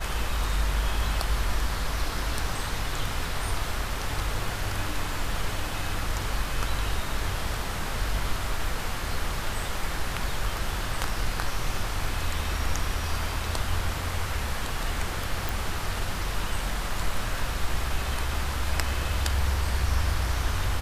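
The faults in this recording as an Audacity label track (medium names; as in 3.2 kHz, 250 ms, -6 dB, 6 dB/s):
15.490000	15.490000	pop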